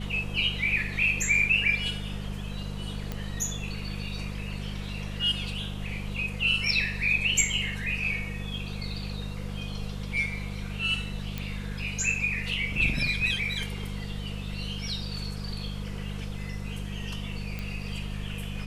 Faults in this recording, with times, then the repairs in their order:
hum 50 Hz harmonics 4 -35 dBFS
3.12 pop -18 dBFS
11.38 pop -18 dBFS
17.59 pop -21 dBFS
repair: de-click; de-hum 50 Hz, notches 4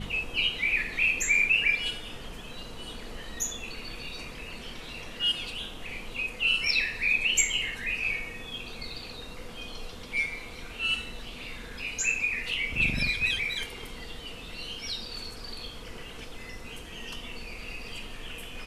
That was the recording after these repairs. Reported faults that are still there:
none

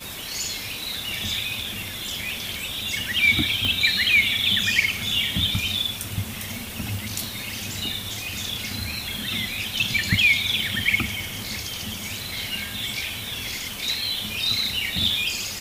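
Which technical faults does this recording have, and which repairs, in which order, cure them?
3.65 pop -12 dBFS
6.54 pop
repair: de-click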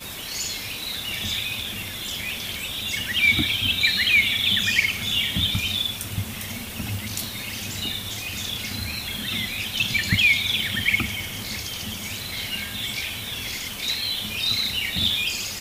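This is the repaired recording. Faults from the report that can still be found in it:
none

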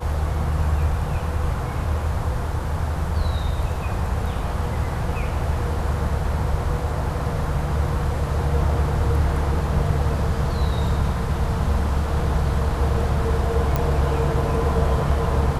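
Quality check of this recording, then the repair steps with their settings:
13.76 pop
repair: de-click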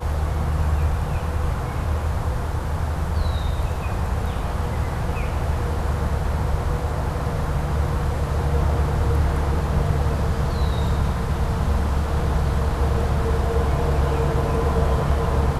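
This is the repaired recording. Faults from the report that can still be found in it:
none

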